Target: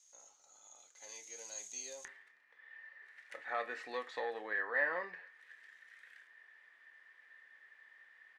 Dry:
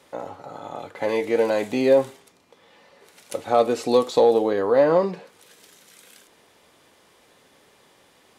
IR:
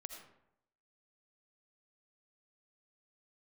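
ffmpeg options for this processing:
-filter_complex "[0:a]asetnsamples=n=441:p=0,asendcmd='2.05 bandpass f 1800',bandpass=f=6500:t=q:w=18:csg=0,asplit=2[s0][s1];[s1]adelay=28,volume=0.224[s2];[s0][s2]amix=inputs=2:normalize=0,volume=3.35"

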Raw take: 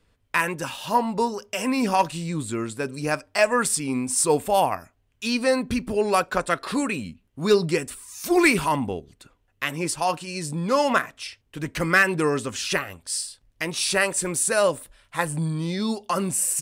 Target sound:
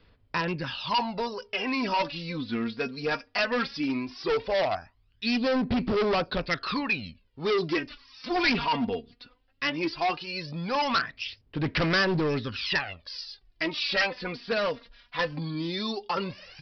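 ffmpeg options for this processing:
-filter_complex "[0:a]acrossover=split=3600[s0][s1];[s1]acompressor=threshold=0.01:ratio=4:attack=1:release=60[s2];[s0][s2]amix=inputs=2:normalize=0,aphaser=in_gain=1:out_gain=1:delay=4.3:decay=0.66:speed=0.17:type=sinusoidal,aresample=11025,asoftclip=type=hard:threshold=0.119,aresample=44100,aemphasis=mode=production:type=75kf,volume=0.596"

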